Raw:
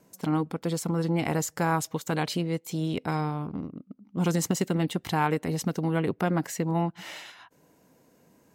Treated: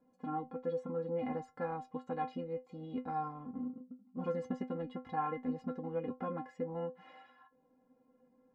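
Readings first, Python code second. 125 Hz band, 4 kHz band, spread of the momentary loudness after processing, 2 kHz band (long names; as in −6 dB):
−18.5 dB, −25.0 dB, 6 LU, −18.0 dB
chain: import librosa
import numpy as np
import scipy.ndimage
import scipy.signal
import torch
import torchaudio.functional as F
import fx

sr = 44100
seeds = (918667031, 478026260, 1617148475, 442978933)

y = scipy.signal.sosfilt(scipy.signal.butter(2, 1200.0, 'lowpass', fs=sr, output='sos'), x)
y = fx.stiff_resonator(y, sr, f0_hz=250.0, decay_s=0.21, stiffness=0.008)
y = y * librosa.db_to_amplitude(4.0)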